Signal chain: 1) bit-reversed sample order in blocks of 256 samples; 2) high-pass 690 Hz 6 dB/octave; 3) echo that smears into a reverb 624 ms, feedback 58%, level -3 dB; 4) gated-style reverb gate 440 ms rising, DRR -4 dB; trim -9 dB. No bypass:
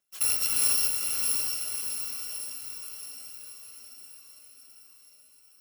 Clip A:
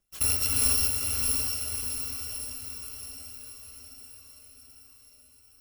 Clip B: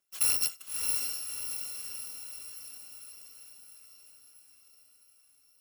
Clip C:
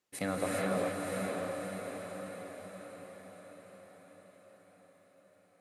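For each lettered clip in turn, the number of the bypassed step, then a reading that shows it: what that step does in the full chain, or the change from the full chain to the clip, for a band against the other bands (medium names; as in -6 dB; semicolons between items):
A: 2, 250 Hz band +9.0 dB; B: 4, echo-to-direct 7.0 dB to -1.0 dB; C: 1, 8 kHz band -27.0 dB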